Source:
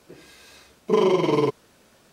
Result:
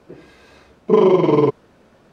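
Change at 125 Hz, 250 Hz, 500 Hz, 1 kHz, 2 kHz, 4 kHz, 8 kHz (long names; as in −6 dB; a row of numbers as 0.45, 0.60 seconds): +7.0 dB, +6.5 dB, +6.5 dB, +4.5 dB, 0.0 dB, −2.5 dB, can't be measured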